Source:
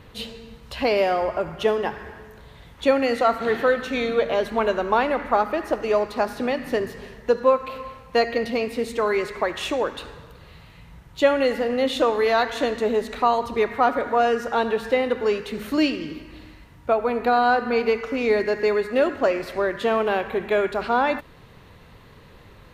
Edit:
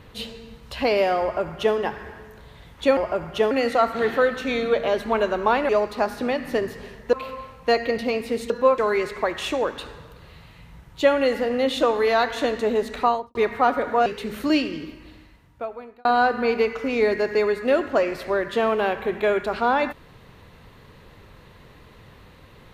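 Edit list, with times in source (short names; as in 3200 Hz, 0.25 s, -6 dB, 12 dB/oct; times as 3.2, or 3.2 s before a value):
1.22–1.76 copy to 2.97
5.15–5.88 cut
7.32–7.6 move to 8.97
13.23–13.54 studio fade out
14.25–15.34 cut
15.98–17.33 fade out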